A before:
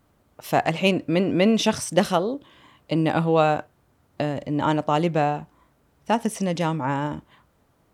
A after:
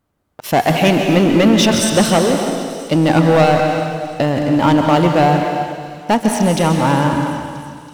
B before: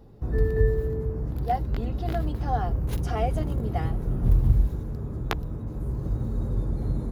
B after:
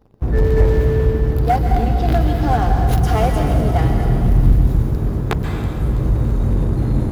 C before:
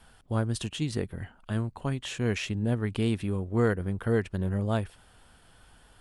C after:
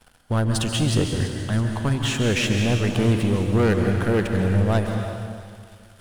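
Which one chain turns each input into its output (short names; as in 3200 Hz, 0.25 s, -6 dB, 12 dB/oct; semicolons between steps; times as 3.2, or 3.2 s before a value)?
sample leveller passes 3; thin delay 0.327 s, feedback 68%, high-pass 3900 Hz, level -15 dB; plate-style reverb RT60 2.1 s, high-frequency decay 1×, pre-delay 0.12 s, DRR 3 dB; gain -1 dB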